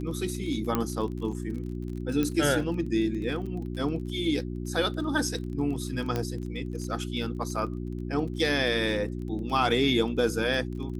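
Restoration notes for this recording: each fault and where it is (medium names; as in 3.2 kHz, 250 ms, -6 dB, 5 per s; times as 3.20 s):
crackle 28 per s -36 dBFS
hum 60 Hz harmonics 6 -34 dBFS
0.75 s: pop -12 dBFS
2.23 s: pop -15 dBFS
6.16 s: pop -15 dBFS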